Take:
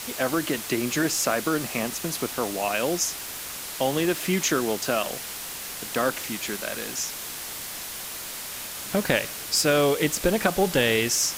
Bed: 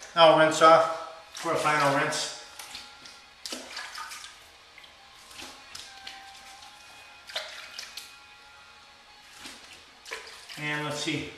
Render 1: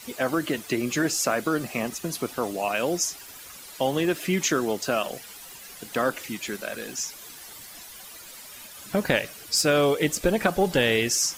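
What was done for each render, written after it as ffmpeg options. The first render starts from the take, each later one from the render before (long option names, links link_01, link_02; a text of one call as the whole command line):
ffmpeg -i in.wav -af "afftdn=noise_reduction=12:noise_floor=-36" out.wav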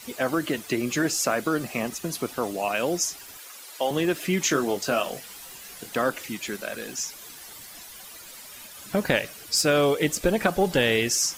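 ffmpeg -i in.wav -filter_complex "[0:a]asettb=1/sr,asplit=3[link_01][link_02][link_03];[link_01]atrim=end=3.374[link_04];[link_02]atrim=start=3.37:end=3.91,asetpts=PTS-STARTPTS,afade=type=in:duration=0.004:curve=qsin,afade=type=out:start_time=0.536:duration=0.004:curve=qsin,highpass=380[link_05];[link_03]atrim=start=3.906[link_06];[link_04][link_05]acrossfade=duration=0.004:curve1=hsin:curve2=qsin[link_07];[link_07][link_06]acrossfade=duration=0.004:curve1=qsin:curve2=hsin,asettb=1/sr,asplit=3[link_08][link_09][link_10];[link_08]atrim=end=4.434[link_11];[link_09]atrim=start=4.43:end=5.9,asetpts=PTS-STARTPTS,afade=type=in:duration=0.004:curve=qsin,afade=type=out:start_time=1.466:duration=0.004:curve=qsin,asplit=2[link_12][link_13];[link_13]adelay=21,volume=-7dB[link_14];[link_12][link_14]amix=inputs=2:normalize=0,atrim=end_sample=64827[link_15];[link_10]atrim=start=5.896[link_16];[link_11][link_15]acrossfade=duration=0.004:curve1=hsin:curve2=qsin[link_17];[link_17][link_16]acrossfade=duration=0.004:curve1=qsin:curve2=hsin" out.wav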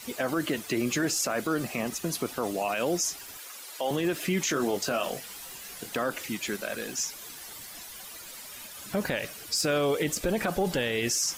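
ffmpeg -i in.wav -af "alimiter=limit=-18.5dB:level=0:latency=1:release=25" out.wav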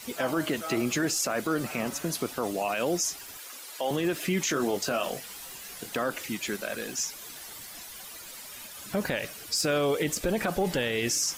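ffmpeg -i in.wav -i bed.wav -filter_complex "[1:a]volume=-21dB[link_01];[0:a][link_01]amix=inputs=2:normalize=0" out.wav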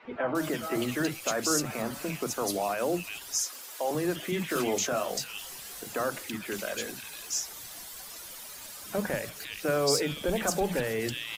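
ffmpeg -i in.wav -filter_complex "[0:a]acrossover=split=230|2300[link_01][link_02][link_03];[link_01]adelay=40[link_04];[link_03]adelay=350[link_05];[link_04][link_02][link_05]amix=inputs=3:normalize=0" out.wav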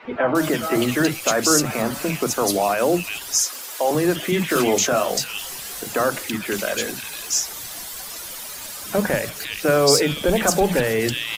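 ffmpeg -i in.wav -af "volume=10dB" out.wav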